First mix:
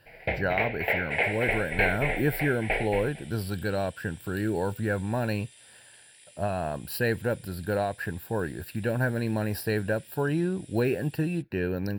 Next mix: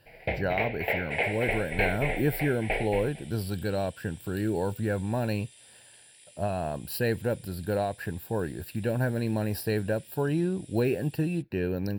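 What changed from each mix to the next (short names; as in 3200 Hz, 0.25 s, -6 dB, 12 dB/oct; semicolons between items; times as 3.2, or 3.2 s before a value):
master: add bell 1500 Hz -5.5 dB 1 oct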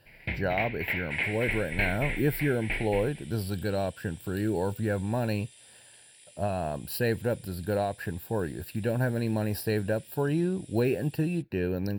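first sound: add band shelf 580 Hz -15 dB 1.2 oct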